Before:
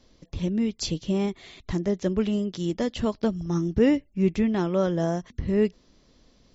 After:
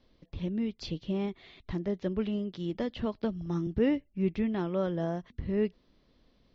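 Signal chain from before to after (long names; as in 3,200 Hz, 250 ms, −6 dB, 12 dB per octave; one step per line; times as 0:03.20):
low-pass filter 4,300 Hz 24 dB per octave
0:02.74–0:03.67: multiband upward and downward compressor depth 40%
level −6.5 dB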